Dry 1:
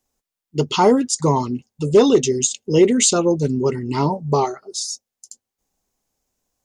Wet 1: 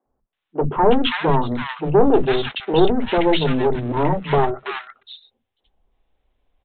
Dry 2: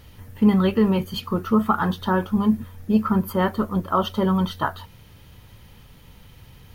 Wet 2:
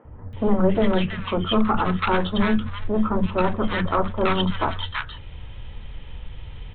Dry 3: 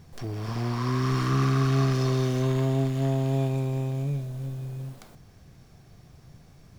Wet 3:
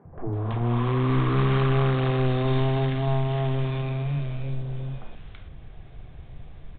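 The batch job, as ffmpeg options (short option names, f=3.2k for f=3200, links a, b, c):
-filter_complex "[0:a]acontrast=67,asubboost=boost=4:cutoff=61,aresample=8000,aeval=exprs='clip(val(0),-1,0.0708)':c=same,aresample=44100,acrossover=split=230|1300[a][b][c];[a]adelay=50[d];[c]adelay=330[e];[d][b][e]amix=inputs=3:normalize=0"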